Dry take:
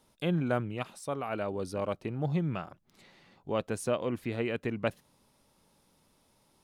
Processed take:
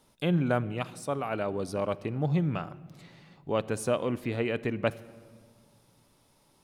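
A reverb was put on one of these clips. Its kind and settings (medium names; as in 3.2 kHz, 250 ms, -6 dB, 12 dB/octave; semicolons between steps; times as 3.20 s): simulated room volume 2700 m³, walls mixed, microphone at 0.32 m; trim +2.5 dB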